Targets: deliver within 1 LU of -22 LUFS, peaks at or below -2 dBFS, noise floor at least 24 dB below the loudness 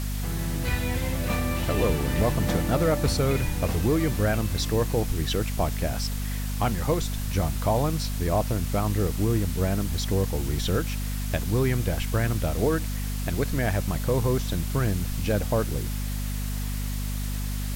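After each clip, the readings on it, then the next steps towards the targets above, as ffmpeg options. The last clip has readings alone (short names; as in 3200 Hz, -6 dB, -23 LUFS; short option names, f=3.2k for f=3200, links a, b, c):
hum 50 Hz; harmonics up to 250 Hz; hum level -27 dBFS; noise floor -29 dBFS; noise floor target -51 dBFS; loudness -26.5 LUFS; peak -11.5 dBFS; loudness target -22.0 LUFS
-> -af "bandreject=f=50:t=h:w=4,bandreject=f=100:t=h:w=4,bandreject=f=150:t=h:w=4,bandreject=f=200:t=h:w=4,bandreject=f=250:t=h:w=4"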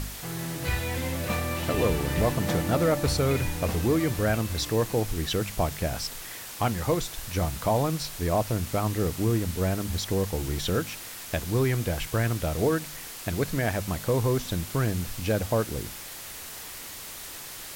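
hum none; noise floor -40 dBFS; noise floor target -52 dBFS
-> -af "afftdn=nr=12:nf=-40"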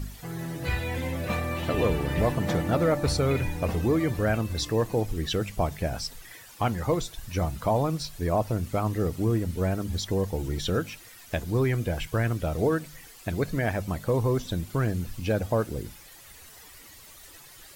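noise floor -49 dBFS; noise floor target -52 dBFS
-> -af "afftdn=nr=6:nf=-49"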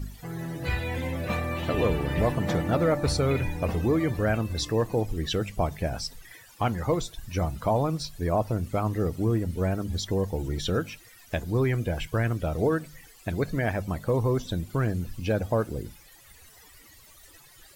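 noise floor -53 dBFS; loudness -28.0 LUFS; peak -14.0 dBFS; loudness target -22.0 LUFS
-> -af "volume=6dB"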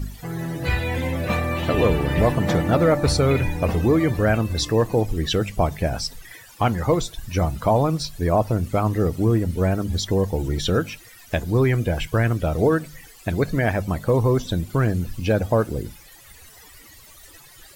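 loudness -22.0 LUFS; peak -8.0 dBFS; noise floor -47 dBFS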